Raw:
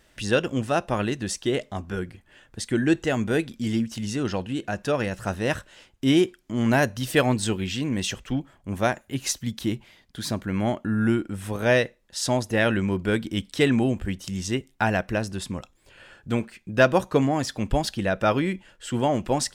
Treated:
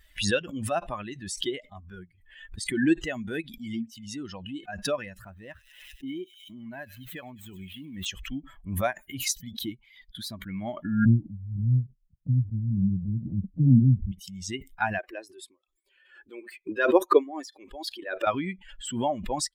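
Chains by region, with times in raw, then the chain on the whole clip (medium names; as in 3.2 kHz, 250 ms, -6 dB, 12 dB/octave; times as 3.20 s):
5.22–8.06 s: median filter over 9 samples + feedback echo behind a high-pass 100 ms, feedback 64%, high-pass 3.9 kHz, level -6 dB + compression 4:1, threshold -24 dBFS
11.05–14.12 s: inverse Chebyshev low-pass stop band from 1.3 kHz, stop band 70 dB + peaking EQ 130 Hz +11.5 dB 0.99 oct + three bands expanded up and down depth 40%
14.98–18.27 s: tremolo 4.1 Hz, depth 76% + resonant low shelf 240 Hz -13.5 dB, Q 3 + band-stop 660 Hz, Q 18
whole clip: expander on every frequency bin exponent 2; swell ahead of each attack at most 61 dB/s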